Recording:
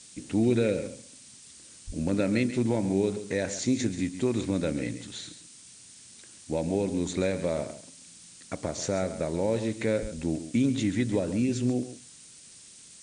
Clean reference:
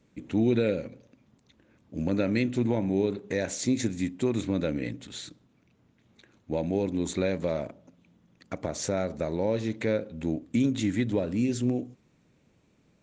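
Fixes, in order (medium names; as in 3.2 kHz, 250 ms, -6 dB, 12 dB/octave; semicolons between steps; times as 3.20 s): de-plosive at 1.86/10.01 s; noise print and reduce 14 dB; inverse comb 136 ms -12.5 dB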